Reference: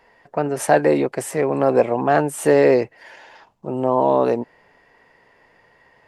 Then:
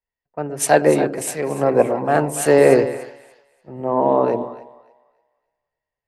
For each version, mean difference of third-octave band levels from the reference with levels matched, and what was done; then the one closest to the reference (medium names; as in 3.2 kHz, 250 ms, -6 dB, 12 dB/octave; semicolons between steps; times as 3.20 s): 5.0 dB: bass shelf 63 Hz +7.5 dB; two-band feedback delay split 570 Hz, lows 121 ms, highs 290 ms, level -8 dB; three bands expanded up and down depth 100%; trim -1 dB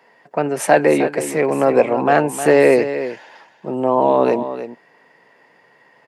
3.0 dB: dynamic bell 2.4 kHz, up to +6 dB, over -42 dBFS, Q 2; high-pass 140 Hz 24 dB/octave; delay 310 ms -11 dB; trim +2 dB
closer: second